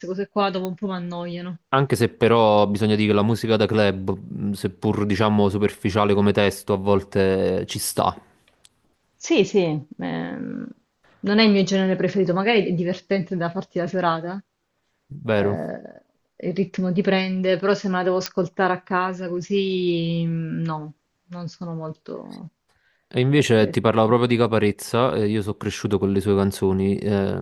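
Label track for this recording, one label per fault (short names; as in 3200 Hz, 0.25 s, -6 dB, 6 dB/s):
0.650000	0.650000	pop -14 dBFS
18.260000	18.260000	pop -8 dBFS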